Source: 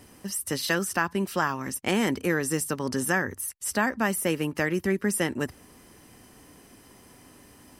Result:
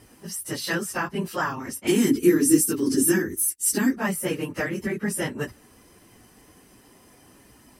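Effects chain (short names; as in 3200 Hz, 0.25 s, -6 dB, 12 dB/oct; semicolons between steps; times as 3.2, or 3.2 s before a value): phase scrambler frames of 50 ms; 1.87–3.97 EQ curve 150 Hz 0 dB, 340 Hz +14 dB, 590 Hz -13 dB, 9900 Hz +11 dB; gain -1 dB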